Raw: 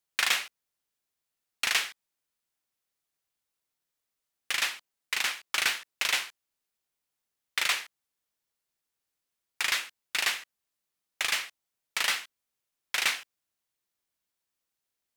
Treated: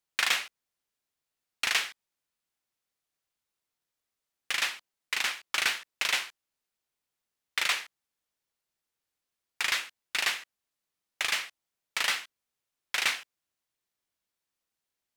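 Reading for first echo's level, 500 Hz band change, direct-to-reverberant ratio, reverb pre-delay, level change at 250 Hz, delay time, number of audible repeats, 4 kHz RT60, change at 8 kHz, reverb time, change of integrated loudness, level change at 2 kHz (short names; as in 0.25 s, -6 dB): none, 0.0 dB, none, none, 0.0 dB, none, none, none, -2.0 dB, none, -0.5 dB, 0.0 dB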